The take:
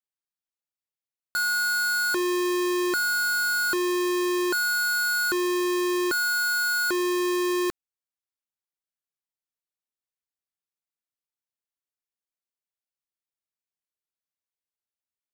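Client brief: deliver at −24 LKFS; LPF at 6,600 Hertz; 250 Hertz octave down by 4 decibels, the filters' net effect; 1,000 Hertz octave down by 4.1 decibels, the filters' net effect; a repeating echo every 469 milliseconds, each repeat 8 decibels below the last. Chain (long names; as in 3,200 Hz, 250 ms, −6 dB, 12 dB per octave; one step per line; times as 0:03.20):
low-pass filter 6,600 Hz
parametric band 250 Hz −7 dB
parametric band 1,000 Hz −6.5 dB
repeating echo 469 ms, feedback 40%, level −8 dB
level +2 dB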